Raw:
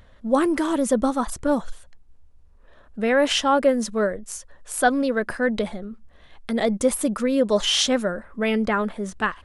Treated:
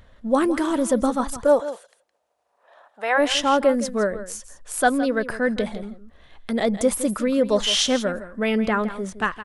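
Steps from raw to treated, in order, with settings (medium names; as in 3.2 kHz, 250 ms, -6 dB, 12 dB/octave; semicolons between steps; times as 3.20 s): 1.43–3.17 s: resonant high-pass 450 Hz -> 880 Hz, resonance Q 4; delay 164 ms -13.5 dB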